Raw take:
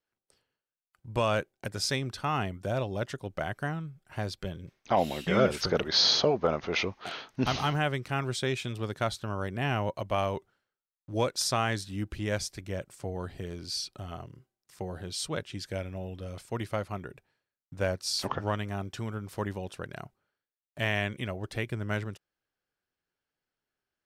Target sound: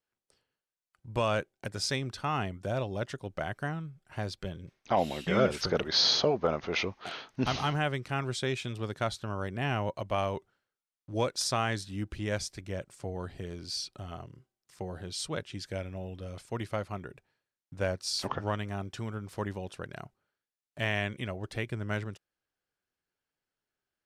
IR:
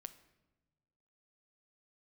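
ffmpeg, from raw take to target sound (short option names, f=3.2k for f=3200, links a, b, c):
-af "lowpass=11k,volume=-1.5dB"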